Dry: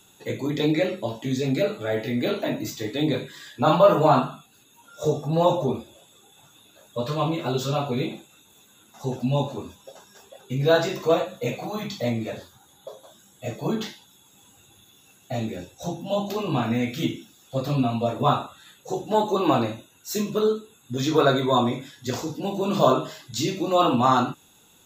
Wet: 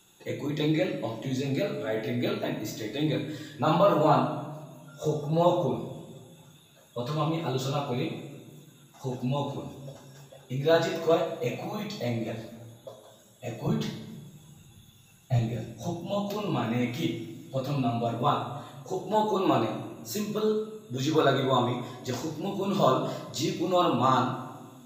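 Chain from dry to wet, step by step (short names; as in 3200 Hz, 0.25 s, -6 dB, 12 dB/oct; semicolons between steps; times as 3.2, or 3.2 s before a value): 13.67–15.39 resonant low shelf 190 Hz +10 dB, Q 1.5; shoebox room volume 1100 m³, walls mixed, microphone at 0.78 m; gain -5 dB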